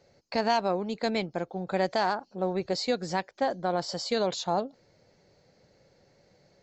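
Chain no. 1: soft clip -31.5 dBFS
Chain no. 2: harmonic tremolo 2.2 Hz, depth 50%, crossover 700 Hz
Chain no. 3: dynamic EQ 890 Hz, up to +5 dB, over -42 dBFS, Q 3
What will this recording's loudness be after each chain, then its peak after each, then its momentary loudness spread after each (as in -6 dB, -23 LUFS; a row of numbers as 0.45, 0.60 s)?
-36.5, -32.0, -28.5 LUFS; -31.5, -16.0, -13.0 dBFS; 4, 7, 7 LU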